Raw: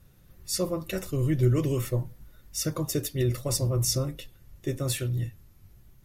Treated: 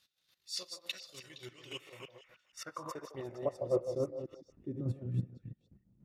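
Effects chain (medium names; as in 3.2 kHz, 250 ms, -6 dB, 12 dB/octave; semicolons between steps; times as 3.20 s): chunks repeated in reverse 158 ms, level -5 dB; square tremolo 3.5 Hz, depth 65%, duty 20%; transient shaper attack -6 dB, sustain -10 dB; band-pass sweep 4 kHz -> 210 Hz, 1.34–4.87 s; repeats whose band climbs or falls 155 ms, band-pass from 660 Hz, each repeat 1.4 oct, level -6.5 dB; trim +8.5 dB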